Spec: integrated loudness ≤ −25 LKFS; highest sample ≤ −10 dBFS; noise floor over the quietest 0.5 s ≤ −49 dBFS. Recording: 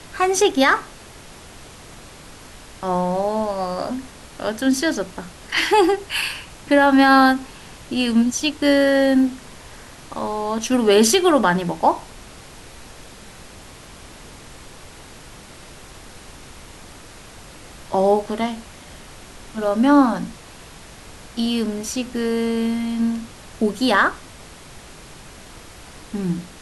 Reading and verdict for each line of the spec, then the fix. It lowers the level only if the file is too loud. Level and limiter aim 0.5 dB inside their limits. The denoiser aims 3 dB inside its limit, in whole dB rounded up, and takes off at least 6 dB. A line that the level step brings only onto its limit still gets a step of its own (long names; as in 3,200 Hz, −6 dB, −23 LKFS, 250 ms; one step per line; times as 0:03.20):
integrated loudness −19.5 LKFS: out of spec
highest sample −5.0 dBFS: out of spec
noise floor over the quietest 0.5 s −41 dBFS: out of spec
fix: broadband denoise 6 dB, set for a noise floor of −41 dBFS
level −6 dB